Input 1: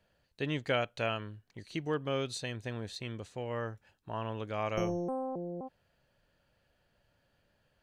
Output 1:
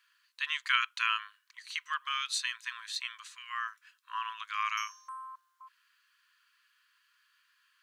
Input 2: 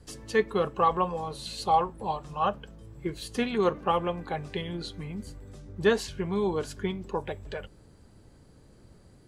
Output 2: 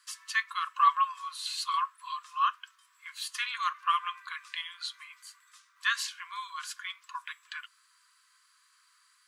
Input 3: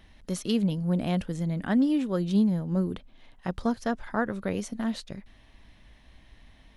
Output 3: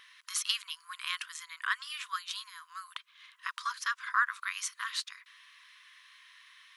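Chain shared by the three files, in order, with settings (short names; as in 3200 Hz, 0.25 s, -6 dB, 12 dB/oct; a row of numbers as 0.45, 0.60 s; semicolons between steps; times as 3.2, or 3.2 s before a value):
brick-wall FIR high-pass 980 Hz; normalise peaks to -12 dBFS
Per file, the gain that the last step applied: +7.5, +3.5, +6.5 dB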